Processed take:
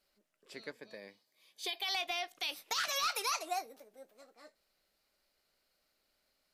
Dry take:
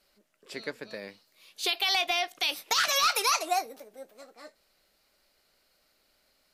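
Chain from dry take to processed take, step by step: 0.72–1.88 notch comb 1400 Hz; gain -9 dB

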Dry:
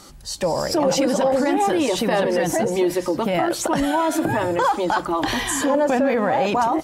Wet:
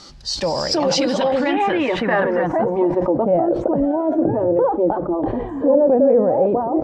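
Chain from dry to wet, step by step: low-pass sweep 4900 Hz -> 510 Hz, 0.91–3.51; sustainer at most 78 dB/s

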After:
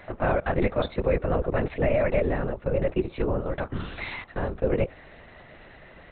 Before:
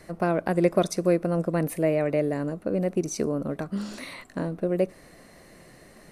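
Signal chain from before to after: low shelf 330 Hz -12 dB; limiter -20 dBFS, peak gain reduction 8 dB; LPC vocoder at 8 kHz whisper; gain +7 dB

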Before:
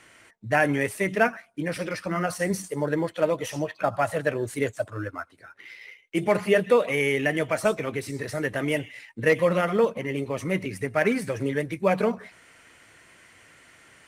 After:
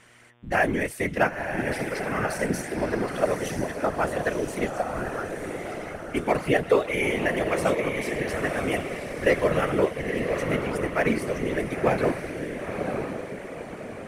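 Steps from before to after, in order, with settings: diffused feedback echo 0.977 s, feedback 46%, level -5 dB; whisperiser; buzz 120 Hz, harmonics 30, -60 dBFS -4 dB/oct; gain -1.5 dB

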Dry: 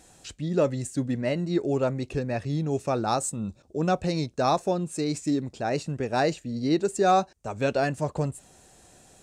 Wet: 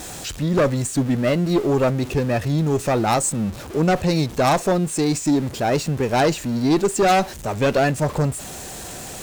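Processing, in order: zero-crossing step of -37 dBFS; added harmonics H 4 -18 dB, 5 -10 dB, 7 -19 dB, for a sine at -11.5 dBFS; gain +2 dB

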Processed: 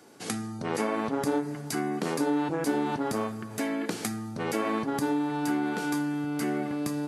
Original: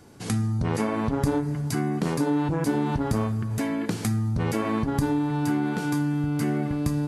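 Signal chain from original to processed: HPF 290 Hz 12 dB/oct; notch 1000 Hz, Q 18

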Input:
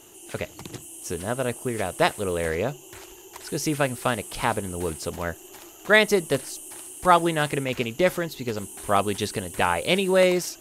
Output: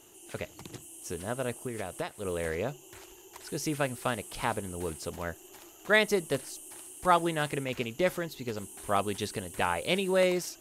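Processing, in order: 1.62–2.25 compressor 10:1, threshold -25 dBFS, peak gain reduction 11.5 dB; gain -6.5 dB

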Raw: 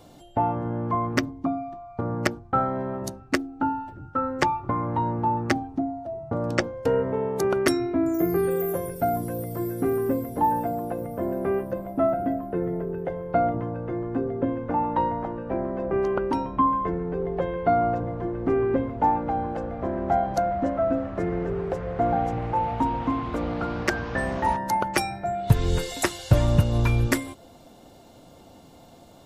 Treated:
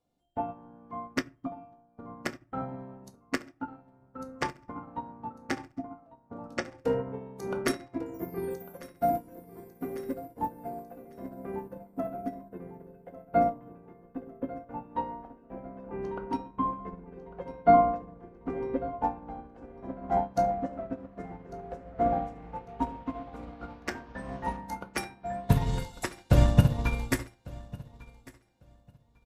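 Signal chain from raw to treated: feedback echo 1.149 s, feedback 49%, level -9 dB; reverb RT60 0.55 s, pre-delay 4 ms, DRR 3 dB; upward expander 2.5:1, over -34 dBFS

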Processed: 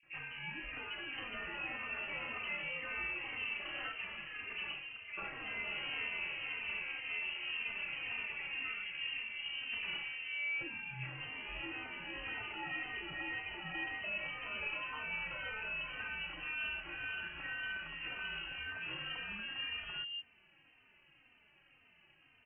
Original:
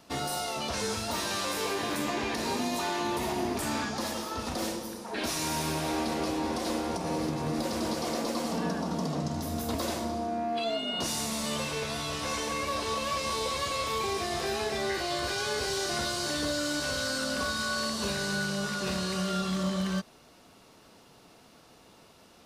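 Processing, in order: three bands offset in time mids, highs, lows 30/200 ms, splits 180/770 Hz; inverted band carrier 3000 Hz; endless flanger 3.1 ms -1.9 Hz; gain -5 dB

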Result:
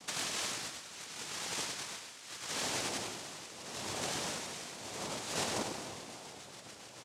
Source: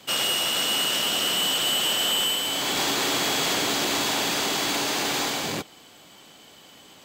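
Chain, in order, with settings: rotary speaker horn 0.8 Hz, later 7 Hz, at 4.85; spring tank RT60 2.9 s, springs 42/48 ms, chirp 40 ms, DRR 9 dB; noise vocoder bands 2; negative-ratio compressor -33 dBFS, ratio -0.5; on a send: echo 99 ms -8 dB; on the sum: gain -6.5 dB

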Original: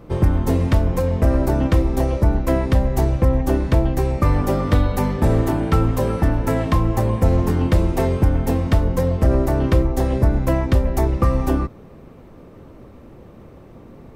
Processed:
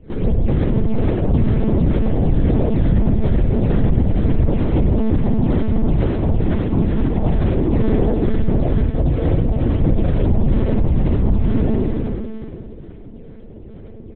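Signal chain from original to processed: spectral trails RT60 2.68 s; Gaussian blur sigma 14 samples; outdoor echo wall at 110 m, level -28 dB; in parallel at -7 dB: decimation with a swept rate 15×, swing 160% 2.2 Hz; on the sum: spring tank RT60 1.4 s, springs 60 ms, chirp 50 ms, DRR -1.5 dB; flange 0.22 Hz, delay 3.2 ms, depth 5.7 ms, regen -27%; soft clip -10.5 dBFS, distortion -11 dB; monotone LPC vocoder at 8 kHz 220 Hz; 8.85–9.8 notch comb 200 Hz

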